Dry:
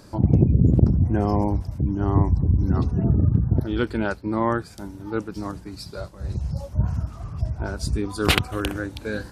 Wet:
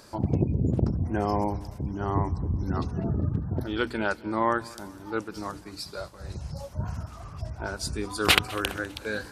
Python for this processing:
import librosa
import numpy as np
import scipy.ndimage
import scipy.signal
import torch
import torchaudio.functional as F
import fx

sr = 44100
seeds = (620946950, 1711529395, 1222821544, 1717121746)

y = fx.low_shelf(x, sr, hz=400.0, db=-10.5)
y = fx.hum_notches(y, sr, base_hz=60, count=5)
y = fx.echo_feedback(y, sr, ms=200, feedback_pct=49, wet_db=-22.0)
y = y * librosa.db_to_amplitude(1.5)